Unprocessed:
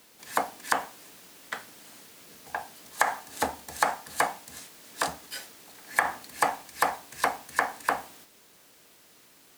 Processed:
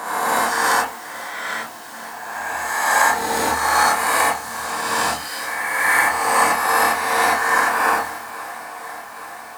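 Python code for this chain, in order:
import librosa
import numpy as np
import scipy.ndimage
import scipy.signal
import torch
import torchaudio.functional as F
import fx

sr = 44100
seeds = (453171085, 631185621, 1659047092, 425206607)

p1 = fx.spec_swells(x, sr, rise_s=1.93)
p2 = fx.doubler(p1, sr, ms=26.0, db=-6.5)
p3 = p2 + fx.echo_swing(p2, sr, ms=828, ratio=1.5, feedback_pct=67, wet_db=-18, dry=0)
p4 = fx.rev_gated(p3, sr, seeds[0], gate_ms=110, shape='rising', drr_db=-3.0)
p5 = fx.dynamic_eq(p4, sr, hz=680.0, q=5.3, threshold_db=-34.0, ratio=4.0, max_db=-5)
y = p5 * 10.0 ** (-1.0 / 20.0)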